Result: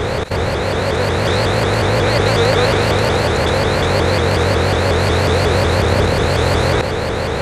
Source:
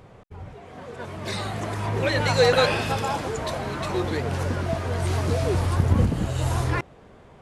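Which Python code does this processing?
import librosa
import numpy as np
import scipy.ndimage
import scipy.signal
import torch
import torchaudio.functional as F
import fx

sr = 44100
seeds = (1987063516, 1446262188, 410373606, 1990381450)

y = fx.bin_compress(x, sr, power=0.2)
y = fx.vibrato_shape(y, sr, shape='saw_up', rate_hz=5.5, depth_cents=250.0)
y = y * librosa.db_to_amplitude(-1.5)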